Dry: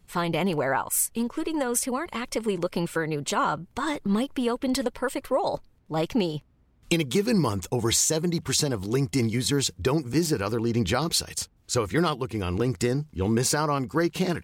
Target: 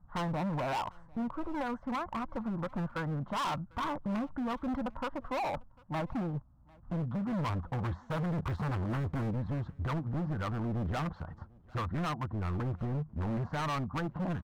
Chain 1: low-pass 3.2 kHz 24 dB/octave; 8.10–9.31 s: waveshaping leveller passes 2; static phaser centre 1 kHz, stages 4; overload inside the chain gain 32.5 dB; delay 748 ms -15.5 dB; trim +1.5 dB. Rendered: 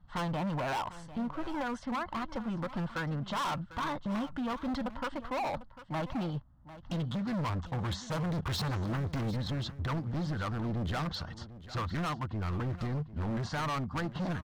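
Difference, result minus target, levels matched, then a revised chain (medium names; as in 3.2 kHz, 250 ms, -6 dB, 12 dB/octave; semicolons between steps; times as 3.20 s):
echo-to-direct +11 dB; 4 kHz band +5.5 dB
low-pass 1.4 kHz 24 dB/octave; 8.10–9.31 s: waveshaping leveller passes 2; static phaser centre 1 kHz, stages 4; overload inside the chain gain 32.5 dB; delay 748 ms -26.5 dB; trim +1.5 dB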